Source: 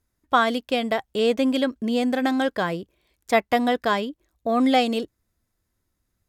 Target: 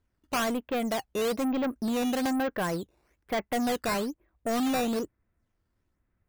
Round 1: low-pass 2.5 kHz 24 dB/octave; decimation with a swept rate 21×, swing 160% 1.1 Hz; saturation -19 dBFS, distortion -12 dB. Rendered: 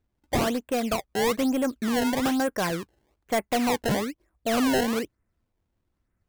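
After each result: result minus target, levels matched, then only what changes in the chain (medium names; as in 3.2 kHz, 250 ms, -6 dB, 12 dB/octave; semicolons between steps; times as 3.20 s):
decimation with a swept rate: distortion +9 dB; saturation: distortion -4 dB
change: decimation with a swept rate 8×, swing 160% 1.1 Hz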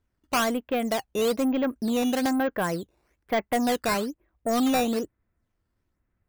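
saturation: distortion -4 dB
change: saturation -25 dBFS, distortion -8 dB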